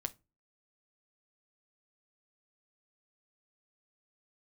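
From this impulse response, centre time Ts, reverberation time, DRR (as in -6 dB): 3 ms, no single decay rate, 8.0 dB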